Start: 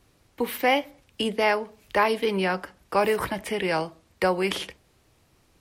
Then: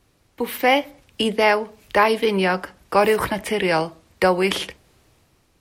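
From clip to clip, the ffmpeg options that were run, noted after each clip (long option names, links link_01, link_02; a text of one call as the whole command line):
ffmpeg -i in.wav -af "dynaudnorm=framelen=120:gausssize=9:maxgain=6dB" out.wav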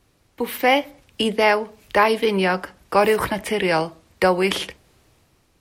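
ffmpeg -i in.wav -af anull out.wav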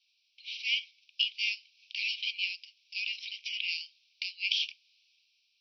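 ffmpeg -i in.wav -af "acontrast=66,asuperpass=centerf=3700:order=20:qfactor=1.1,volume=-8dB" out.wav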